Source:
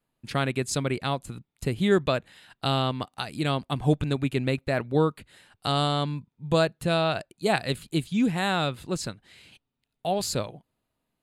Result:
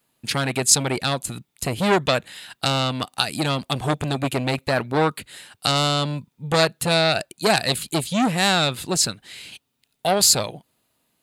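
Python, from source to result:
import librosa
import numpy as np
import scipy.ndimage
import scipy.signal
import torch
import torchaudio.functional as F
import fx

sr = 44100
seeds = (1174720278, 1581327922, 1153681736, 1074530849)

y = fx.highpass(x, sr, hz=120.0, slope=6)
y = fx.high_shelf(y, sr, hz=2900.0, db=10.0)
y = fx.transformer_sat(y, sr, knee_hz=2600.0)
y = y * 10.0 ** (8.0 / 20.0)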